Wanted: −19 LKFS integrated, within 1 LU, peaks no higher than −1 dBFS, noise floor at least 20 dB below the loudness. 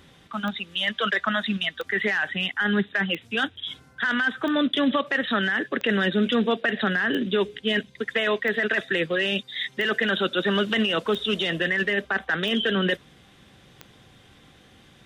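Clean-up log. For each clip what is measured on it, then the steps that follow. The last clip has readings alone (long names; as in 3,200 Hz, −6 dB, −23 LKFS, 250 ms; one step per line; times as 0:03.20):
number of clicks 11; integrated loudness −24.5 LKFS; sample peak −10.5 dBFS; target loudness −19.0 LKFS
→ click removal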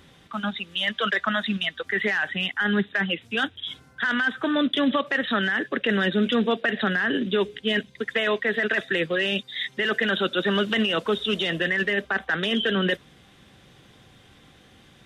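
number of clicks 0; integrated loudness −24.5 LKFS; sample peak −10.5 dBFS; target loudness −19.0 LKFS
→ level +5.5 dB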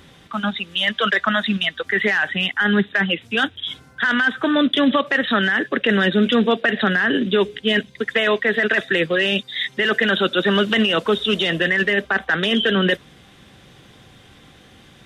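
integrated loudness −19.0 LKFS; sample peak −5.0 dBFS; background noise floor −49 dBFS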